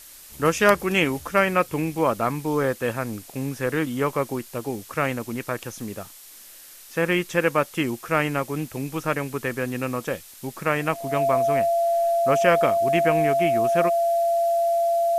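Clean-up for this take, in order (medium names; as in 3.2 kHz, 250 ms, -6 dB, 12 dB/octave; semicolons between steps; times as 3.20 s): band-stop 680 Hz, Q 30; noise print and reduce 23 dB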